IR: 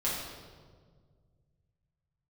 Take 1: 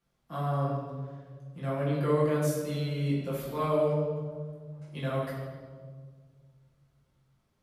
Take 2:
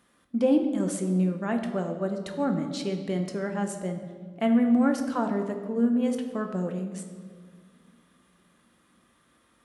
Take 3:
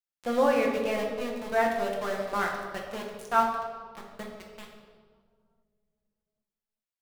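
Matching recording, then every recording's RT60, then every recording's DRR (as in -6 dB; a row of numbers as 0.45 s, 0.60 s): 1; 1.7 s, 1.8 s, 1.7 s; -8.0 dB, 4.0 dB, -1.0 dB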